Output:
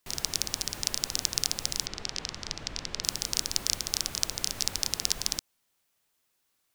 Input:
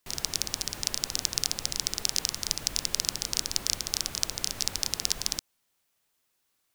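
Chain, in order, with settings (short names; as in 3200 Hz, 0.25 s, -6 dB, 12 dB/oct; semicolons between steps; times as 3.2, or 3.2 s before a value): 1.86–3.04 air absorption 140 m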